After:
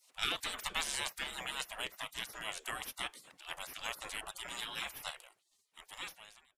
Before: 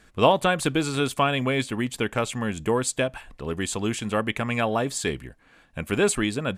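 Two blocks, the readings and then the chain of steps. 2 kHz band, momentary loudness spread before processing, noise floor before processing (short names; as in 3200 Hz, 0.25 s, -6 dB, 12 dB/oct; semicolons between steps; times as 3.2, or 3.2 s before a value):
-11.5 dB, 8 LU, -57 dBFS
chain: ending faded out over 1.73 s; added harmonics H 7 -40 dB, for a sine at -3.5 dBFS; spectral gate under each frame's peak -25 dB weak; gain +4 dB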